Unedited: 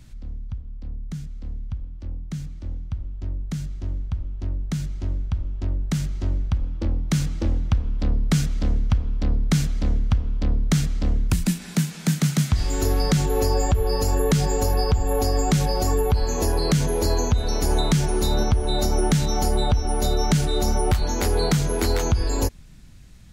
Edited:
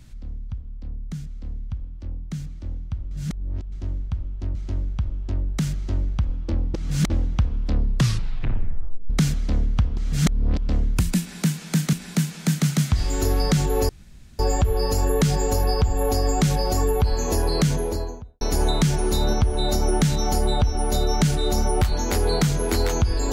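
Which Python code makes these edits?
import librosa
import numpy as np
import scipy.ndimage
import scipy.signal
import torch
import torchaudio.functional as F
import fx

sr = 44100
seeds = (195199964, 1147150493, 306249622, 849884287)

y = fx.studio_fade_out(x, sr, start_s=16.7, length_s=0.81)
y = fx.edit(y, sr, fx.reverse_span(start_s=3.11, length_s=0.61),
    fx.cut(start_s=4.55, length_s=0.33),
    fx.reverse_span(start_s=7.07, length_s=0.36),
    fx.tape_stop(start_s=8.15, length_s=1.28),
    fx.reverse_span(start_s=10.3, length_s=0.72),
    fx.repeat(start_s=11.53, length_s=0.73, count=2),
    fx.insert_room_tone(at_s=13.49, length_s=0.5), tone=tone)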